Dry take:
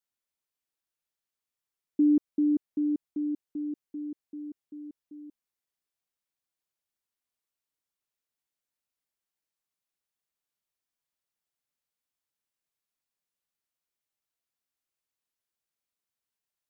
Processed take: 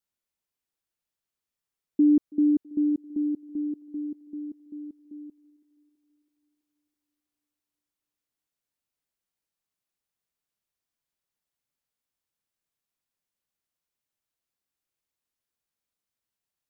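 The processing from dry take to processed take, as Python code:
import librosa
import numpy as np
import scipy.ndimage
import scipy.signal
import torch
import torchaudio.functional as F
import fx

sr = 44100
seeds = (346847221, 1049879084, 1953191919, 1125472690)

y = fx.low_shelf(x, sr, hz=350.0, db=5.0)
y = fx.echo_thinned(y, sr, ms=328, feedback_pct=85, hz=370.0, wet_db=-19)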